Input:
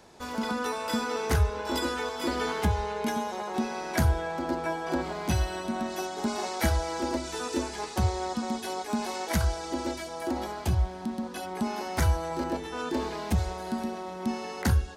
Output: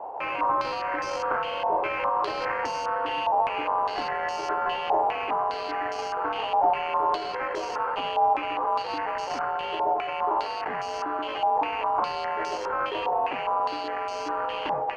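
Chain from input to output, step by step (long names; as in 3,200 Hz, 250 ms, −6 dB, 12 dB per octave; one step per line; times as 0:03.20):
running median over 25 samples
high-pass filter 550 Hz 12 dB per octave
in parallel at 0 dB: compressor whose output falls as the input rises −47 dBFS, ratio −1
on the sum: frequency shifter +68 Hz
decimation without filtering 12×
mid-hump overdrive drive 11 dB, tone 1,000 Hz, clips at −21.5 dBFS
log-companded quantiser 6 bits
low-pass on a step sequencer 4.9 Hz 820–5,600 Hz
level +4 dB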